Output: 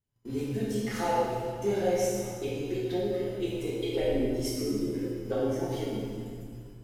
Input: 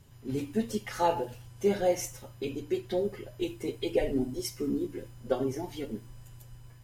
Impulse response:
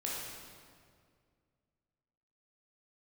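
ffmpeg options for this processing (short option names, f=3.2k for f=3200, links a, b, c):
-filter_complex "[0:a]agate=range=-30dB:threshold=-47dB:ratio=16:detection=peak,asplit=2[a][b];[b]acompressor=threshold=-35dB:ratio=6,volume=2.5dB[c];[a][c]amix=inputs=2:normalize=0,volume=15dB,asoftclip=hard,volume=-15dB[d];[1:a]atrim=start_sample=2205[e];[d][e]afir=irnorm=-1:irlink=0,volume=-5.5dB"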